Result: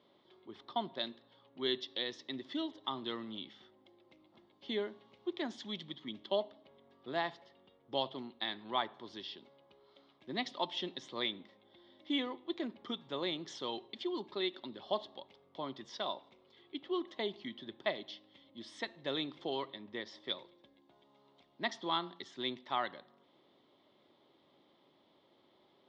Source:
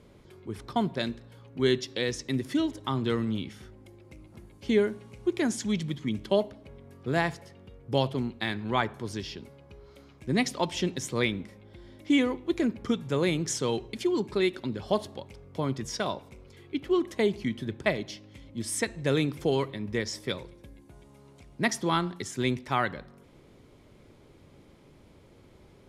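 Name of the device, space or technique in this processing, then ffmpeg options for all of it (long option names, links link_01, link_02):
phone earpiece: -filter_complex "[0:a]asettb=1/sr,asplit=3[link_01][link_02][link_03];[link_01]atrim=end=19.814[link_04];[link_02]atrim=start=19.81:end=20.25,asetpts=PTS-STARTPTS,afade=type=in:duration=0.004:curve=qsin,afade=type=out:start_time=0.436:duration=0.004:curve=qsin,highshelf=frequency=5800:gain=-8[link_05];[link_03]atrim=start=20.246[link_06];[link_04][link_05]acrossfade=duration=0.004:curve1=hsin:curve2=qsin[link_07];[link_07][link_06]acrossfade=duration=0.004:curve1=qsin:curve2=hsin,highpass=400,equalizer=frequency=460:width_type=q:width=4:gain=-9,equalizer=frequency=1500:width_type=q:width=4:gain=-8,equalizer=frequency=2400:width_type=q:width=4:gain=-10,equalizer=frequency=3500:width_type=q:width=4:gain=7,lowpass=frequency=4100:width=0.5412,lowpass=frequency=4100:width=1.3066,volume=-5dB"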